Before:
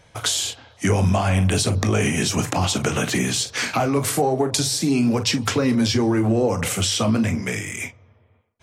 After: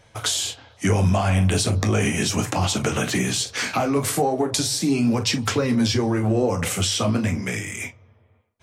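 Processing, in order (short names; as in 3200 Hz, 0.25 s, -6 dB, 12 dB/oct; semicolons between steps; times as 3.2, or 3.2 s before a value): flange 0.37 Hz, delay 8.9 ms, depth 3 ms, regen -53%; gain +3 dB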